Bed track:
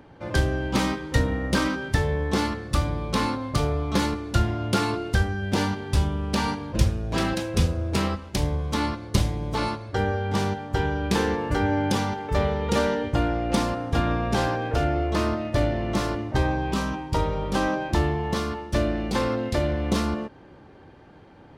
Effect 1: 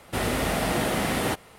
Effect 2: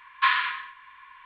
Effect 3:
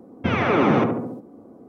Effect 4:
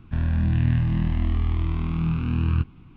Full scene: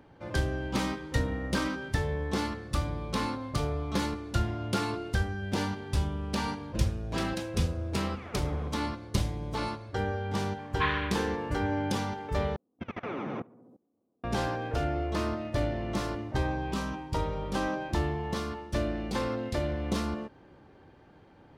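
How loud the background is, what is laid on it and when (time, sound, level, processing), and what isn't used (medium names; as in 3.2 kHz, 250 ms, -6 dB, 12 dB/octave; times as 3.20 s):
bed track -6.5 dB
7.84 s: add 3 -16 dB + square tremolo 2 Hz, depth 60%, duty 10%
10.58 s: add 2 -8 dB
12.56 s: replace with 3 -14 dB + level held to a coarse grid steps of 21 dB
not used: 1, 4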